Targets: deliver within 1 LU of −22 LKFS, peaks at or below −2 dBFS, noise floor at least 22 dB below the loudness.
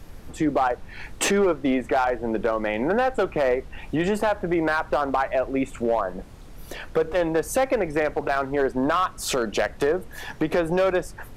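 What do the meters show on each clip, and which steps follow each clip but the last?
share of clipped samples 0.9%; peaks flattened at −14.5 dBFS; background noise floor −42 dBFS; target noise floor −46 dBFS; integrated loudness −24.0 LKFS; sample peak −14.5 dBFS; target loudness −22.0 LKFS
→ clipped peaks rebuilt −14.5 dBFS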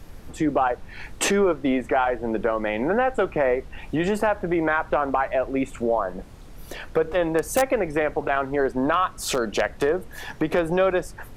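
share of clipped samples 0.0%; background noise floor −42 dBFS; target noise floor −46 dBFS
→ noise reduction from a noise print 6 dB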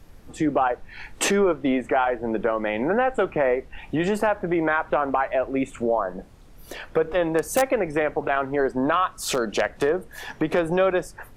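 background noise floor −47 dBFS; integrated loudness −24.0 LKFS; sample peak −5.5 dBFS; target loudness −22.0 LKFS
→ level +2 dB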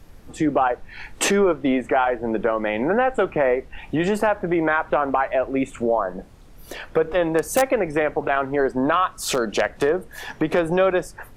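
integrated loudness −22.0 LKFS; sample peak −3.5 dBFS; background noise floor −45 dBFS

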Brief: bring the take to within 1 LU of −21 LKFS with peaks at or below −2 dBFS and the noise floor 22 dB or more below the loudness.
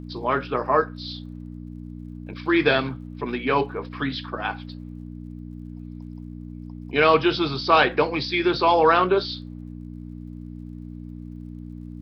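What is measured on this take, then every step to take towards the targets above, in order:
crackle rate 50 per second; mains hum 60 Hz; hum harmonics up to 300 Hz; level of the hum −35 dBFS; integrated loudness −22.0 LKFS; sample peak −4.0 dBFS; target loudness −21.0 LKFS
→ click removal
hum removal 60 Hz, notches 5
level +1 dB

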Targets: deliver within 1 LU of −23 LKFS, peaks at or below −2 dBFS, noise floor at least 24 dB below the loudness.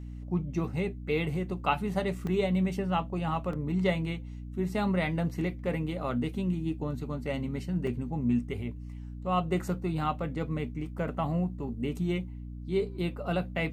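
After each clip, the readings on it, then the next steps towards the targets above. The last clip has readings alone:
number of dropouts 3; longest dropout 2.6 ms; mains hum 60 Hz; hum harmonics up to 300 Hz; level of the hum −38 dBFS; integrated loudness −31.5 LKFS; sample peak −13.0 dBFS; target loudness −23.0 LKFS
→ repair the gap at 0:02.27/0:03.53/0:07.87, 2.6 ms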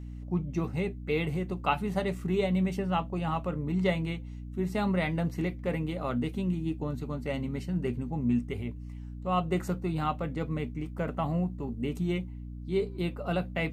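number of dropouts 0; mains hum 60 Hz; hum harmonics up to 300 Hz; level of the hum −38 dBFS
→ mains-hum notches 60/120/180/240/300 Hz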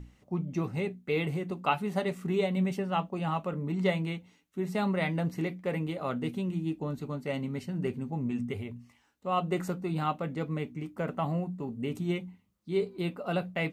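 mains hum none found; integrated loudness −32.5 LKFS; sample peak −13.5 dBFS; target loudness −23.0 LKFS
→ level +9.5 dB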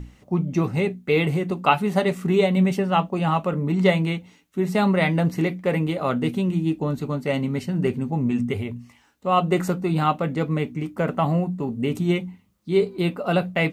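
integrated loudness −23.0 LKFS; sample peak −4.0 dBFS; background noise floor −57 dBFS

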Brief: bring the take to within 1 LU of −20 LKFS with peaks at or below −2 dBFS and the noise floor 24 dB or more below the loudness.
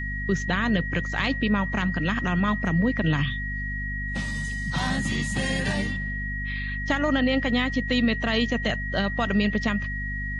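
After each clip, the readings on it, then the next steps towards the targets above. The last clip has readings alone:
mains hum 50 Hz; hum harmonics up to 250 Hz; level of the hum −29 dBFS; interfering tone 1,900 Hz; level of the tone −31 dBFS; integrated loudness −25.5 LKFS; sample peak −9.0 dBFS; target loudness −20.0 LKFS
→ mains-hum notches 50/100/150/200/250 Hz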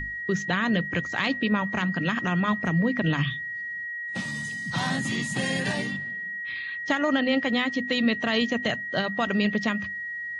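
mains hum none found; interfering tone 1,900 Hz; level of the tone −31 dBFS
→ notch filter 1,900 Hz, Q 30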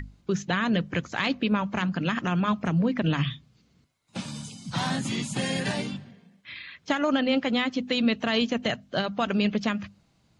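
interfering tone none found; integrated loudness −27.0 LKFS; sample peak −10.5 dBFS; target loudness −20.0 LKFS
→ level +7 dB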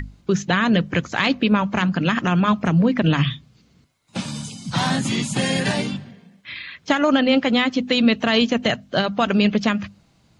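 integrated loudness −20.0 LKFS; sample peak −3.5 dBFS; background noise floor −58 dBFS

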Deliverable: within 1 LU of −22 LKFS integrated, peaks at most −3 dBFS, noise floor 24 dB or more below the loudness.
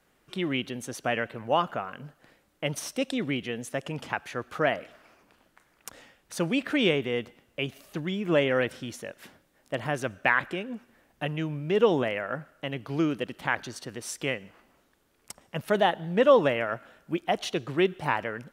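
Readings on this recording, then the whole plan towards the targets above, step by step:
integrated loudness −28.5 LKFS; sample peak −7.5 dBFS; target loudness −22.0 LKFS
→ level +6.5 dB
brickwall limiter −3 dBFS

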